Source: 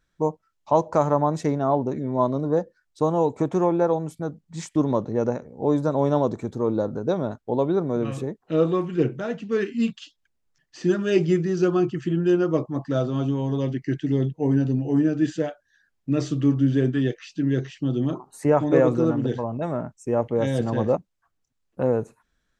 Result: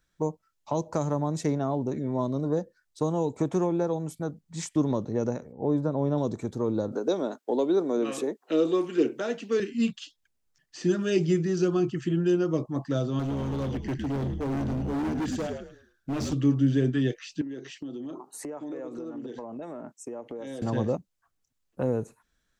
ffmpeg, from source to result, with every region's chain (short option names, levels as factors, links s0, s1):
-filter_complex "[0:a]asettb=1/sr,asplit=3[s0][s1][s2];[s0]atrim=end=5.524[s3];[s1]atrim=start=5.52:end=6.18,asetpts=PTS-STARTPTS,afade=t=in:d=0.004:c=qsin,afade=t=out:st=0.656:d=0.004:c=qsin,lowpass=f=3700:p=1,highshelf=f=2800:g=-10.5[s4];[s2]atrim=start=6.176[s5];[s3][s4]acrossfade=d=0.004:c1=hsin:c2=qsin[s6];[s6][s5]acrossfade=d=0.004:c1=qsin:c2=hsin,asettb=1/sr,asplit=3[s7][s8][s9];[s7]atrim=end=6.924[s10];[s8]atrim=start=6.92:end=9.6,asetpts=PTS-STARTPTS,afade=t=in:d=0.004:c=qsin,afade=t=out:st=2.676:d=0.004:c=qsin,highpass=f=270:w=0.5412,highpass=f=270:w=1.3066,acontrast=27[s11];[s9]atrim=start=9.596[s12];[s10][s11]acrossfade=d=0.004:c1=hsin:c2=qsin[s13];[s13][s12]acrossfade=d=0.004:c1=qsin:c2=hsin,asettb=1/sr,asplit=3[s14][s15][s16];[s14]atrim=end=13.194[s17];[s15]atrim=start=13.19:end=16.33,asetpts=PTS-STARTPTS,afade=t=in:d=0.004:c=qsin,afade=t=out:st=3.136:d=0.004:c=qsin,asplit=5[s18][s19][s20][s21][s22];[s19]adelay=107,afreqshift=-58,volume=0.398[s23];[s20]adelay=214,afreqshift=-116,volume=0.132[s24];[s21]adelay=321,afreqshift=-174,volume=0.0432[s25];[s22]adelay=428,afreqshift=-232,volume=0.0143[s26];[s18][s23][s24][s25][s26]amix=inputs=5:normalize=0,atrim=end_sample=138474,asoftclip=type=hard:threshold=0.0631[s27];[s16]atrim=start=16.326[s28];[s17][s27]acrossfade=d=0.004:c1=hsin:c2=qsin[s29];[s29][s28]acrossfade=d=0.004:c1=qsin:c2=hsin,asettb=1/sr,asplit=3[s30][s31][s32];[s30]atrim=end=17.414[s33];[s31]atrim=start=17.41:end=20.62,asetpts=PTS-STARTPTS,afade=t=in:d=0.004:c=qsin,afade=t=out:st=3.206:d=0.004:c=qsin,highpass=f=280:t=q:w=1.5,acompressor=threshold=0.0282:ratio=10:attack=3.2:release=140:knee=1:detection=peak[s34];[s32]atrim=start=20.616[s35];[s33][s34]acrossfade=d=0.004:c1=hsin:c2=qsin[s36];[s36][s35]acrossfade=d=0.004:c1=qsin:c2=hsin,highshelf=f=4400:g=6.5,acrossover=split=390|3000[s37][s38][s39];[s38]acompressor=threshold=0.0398:ratio=6[s40];[s37][s40][s39]amix=inputs=3:normalize=0,volume=0.75"